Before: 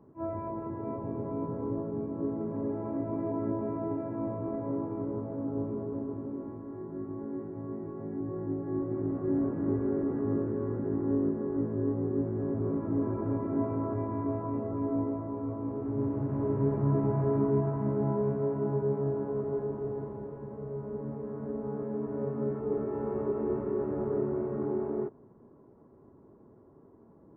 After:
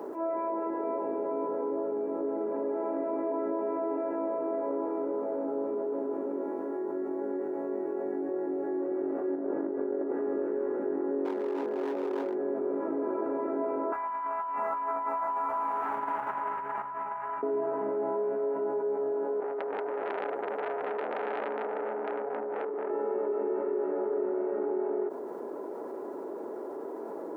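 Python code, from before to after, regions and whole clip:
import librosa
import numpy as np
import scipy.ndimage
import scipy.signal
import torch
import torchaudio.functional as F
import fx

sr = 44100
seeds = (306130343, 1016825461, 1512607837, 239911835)

y = fx.chain(x, sr, fx.lowpass(hz=1400.0, slope=6),
    fx.over_compress(threshold_db=-32.0, ratio=-0.5), at=(9.35, 10.12))
y = fx.chain(y, sr, fx.low_shelf(hz=98.0, db=-12.0),
    fx.overload_stage(gain_db=30.5),
    fx.resample_linear(factor=2), at=(11.25, 12.35))
y = fx.chain(y, sr, fx.curve_eq(hz=(190.0, 320.0, 520.0, 910.0), db=(0, -19, -14, 12)),
    fx.over_compress(threshold_db=-36.0, ratio=-0.5), at=(13.92, 17.43))
y = fx.chain(y, sr, fx.over_compress(threshold_db=-38.0, ratio=-1.0),
    fx.transformer_sat(knee_hz=1100.0), at=(19.4, 22.9))
y = scipy.signal.sosfilt(scipy.signal.butter(4, 370.0, 'highpass', fs=sr, output='sos'), y)
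y = fx.notch(y, sr, hz=1100.0, q=8.2)
y = fx.env_flatten(y, sr, amount_pct=70)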